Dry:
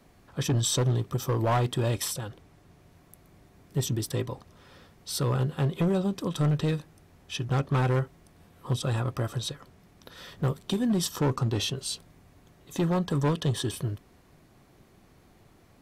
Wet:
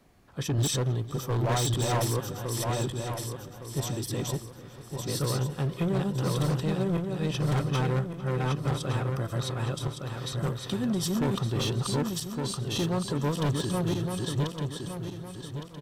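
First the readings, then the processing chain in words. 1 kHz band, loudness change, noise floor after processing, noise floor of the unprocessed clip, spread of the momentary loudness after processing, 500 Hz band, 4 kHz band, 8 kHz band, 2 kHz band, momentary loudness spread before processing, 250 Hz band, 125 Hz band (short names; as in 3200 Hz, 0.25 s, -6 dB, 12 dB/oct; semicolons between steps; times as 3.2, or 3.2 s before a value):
+0.5 dB, -1.0 dB, -45 dBFS, -59 dBFS, 9 LU, +0.5 dB, +0.5 dB, +0.5 dB, +1.0 dB, 12 LU, +0.5 dB, +0.5 dB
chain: regenerating reverse delay 0.581 s, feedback 59%, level -0.5 dB; outdoor echo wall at 77 m, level -16 dB; wavefolder -17.5 dBFS; gain -3 dB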